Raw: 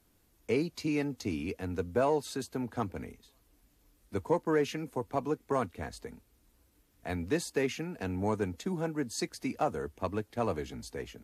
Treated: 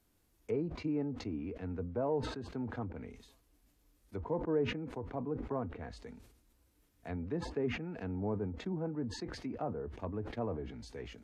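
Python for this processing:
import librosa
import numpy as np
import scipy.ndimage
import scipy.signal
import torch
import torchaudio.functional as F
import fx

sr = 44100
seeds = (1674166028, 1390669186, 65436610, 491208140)

y = fx.env_lowpass_down(x, sr, base_hz=920.0, full_db=-30.0)
y = fx.hpss(y, sr, part='percussive', gain_db=-5)
y = fx.sustainer(y, sr, db_per_s=68.0)
y = F.gain(torch.from_numpy(y), -3.0).numpy()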